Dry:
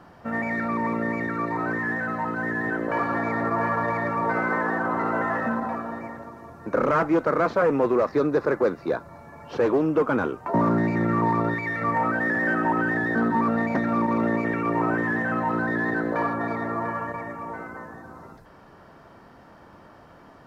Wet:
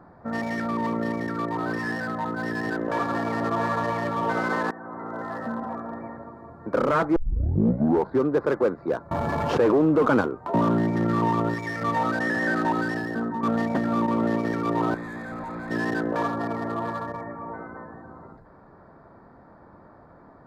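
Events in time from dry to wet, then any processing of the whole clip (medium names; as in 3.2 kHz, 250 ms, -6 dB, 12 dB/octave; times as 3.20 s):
4.71–6.12 s: fade in, from -15 dB
7.16 s: tape start 1.12 s
9.11–10.21 s: level flattener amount 70%
12.65–13.43 s: fade out, to -7.5 dB
14.94–15.71 s: hard clipper -31.5 dBFS
whole clip: local Wiener filter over 15 samples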